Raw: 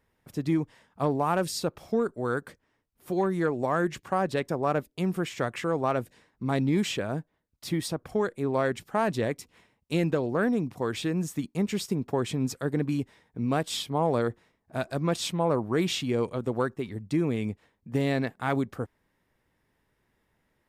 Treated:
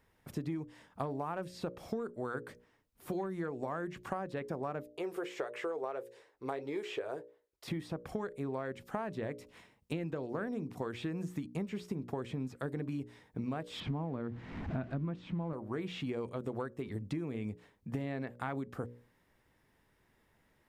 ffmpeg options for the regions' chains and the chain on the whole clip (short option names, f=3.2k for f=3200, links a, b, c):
-filter_complex "[0:a]asettb=1/sr,asplit=3[a][b][c];[a]atrim=end=4.894[d];[b]atrim=start=4.89:end=7.68,asetpts=PTS-STARTPTS,afade=t=in:d=0.004:c=qsin,afade=t=out:st=2.786:d=0.004:c=qsin,lowshelf=f=290:t=q:w=3:g=-12.5,flanger=delay=4.5:depth=3.1:regen=-64:speed=1.6:shape=sinusoidal[e];[c]atrim=start=7.676[f];[d][e]acrossfade=d=0.004:c1=hsin:c2=qsin[g];[g][f]acrossfade=d=0.004:c1=qsin:c2=hsin,asettb=1/sr,asplit=3[h][i][j];[h]atrim=end=13.804[k];[i]atrim=start=13.8:end=15.53,asetpts=PTS-STARTPTS,afade=t=in:d=0.004:c=qsin,afade=t=out:st=1.726:d=0.004:c=qsin,aeval=exprs='val(0)+0.5*0.01*sgn(val(0))':c=same,lowpass=2.4k,lowshelf=f=350:t=q:w=1.5:g=7.5[l];[j]atrim=start=15.526[m];[k][l]acrossfade=d=0.004:c1=hsin:c2=qsin[n];[n][m]acrossfade=d=0.004:c1=qsin:c2=hsin,acrossover=split=2800[o][p];[p]acompressor=threshold=-53dB:ratio=4:attack=1:release=60[q];[o][q]amix=inputs=2:normalize=0,bandreject=f=60:t=h:w=6,bandreject=f=120:t=h:w=6,bandreject=f=180:t=h:w=6,bandreject=f=240:t=h:w=6,bandreject=f=300:t=h:w=6,bandreject=f=360:t=h:w=6,bandreject=f=420:t=h:w=6,bandreject=f=480:t=h:w=6,bandreject=f=540:t=h:w=6,bandreject=f=600:t=h:w=6,acompressor=threshold=-36dB:ratio=12,volume=2dB"